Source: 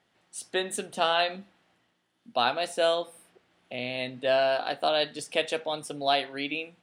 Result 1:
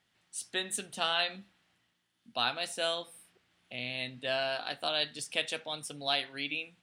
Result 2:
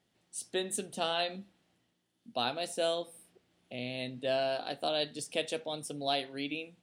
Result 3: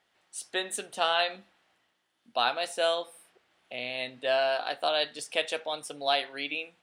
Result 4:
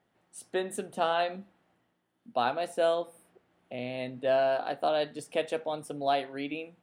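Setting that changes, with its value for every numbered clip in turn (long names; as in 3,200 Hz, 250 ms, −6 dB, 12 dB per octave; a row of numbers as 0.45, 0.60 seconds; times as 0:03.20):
parametric band, centre frequency: 510, 1,300, 150, 4,500 Hertz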